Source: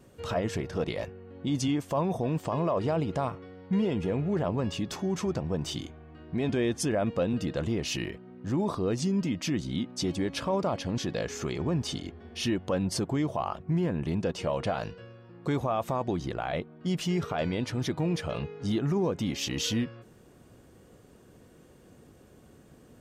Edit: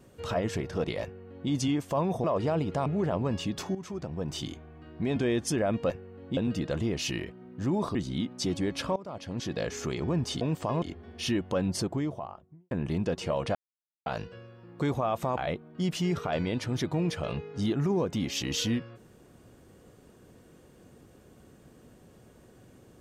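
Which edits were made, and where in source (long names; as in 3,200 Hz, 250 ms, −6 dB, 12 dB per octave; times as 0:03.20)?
0:01.03–0:01.50: duplicate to 0:07.23
0:02.24–0:02.65: move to 0:11.99
0:03.27–0:04.19: remove
0:05.08–0:05.87: fade in, from −12 dB
0:08.81–0:09.53: remove
0:10.54–0:11.21: fade in linear, from −20.5 dB
0:12.85–0:13.88: fade out and dull
0:14.72: splice in silence 0.51 s
0:16.03–0:16.43: remove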